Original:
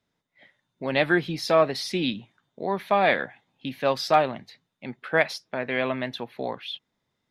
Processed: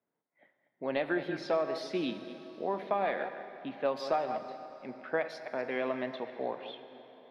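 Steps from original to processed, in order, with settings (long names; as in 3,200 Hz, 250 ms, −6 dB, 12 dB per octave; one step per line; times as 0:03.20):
delay that plays each chunk backwards 137 ms, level −13 dB
low-pass that shuts in the quiet parts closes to 2,000 Hz, open at −20.5 dBFS
high-pass filter 400 Hz 12 dB per octave
downward compressor, threshold −22 dBFS, peak gain reduction 8 dB
spectral tilt −3.5 dB per octave
dense smooth reverb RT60 4 s, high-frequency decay 0.85×, DRR 9.5 dB
level −6 dB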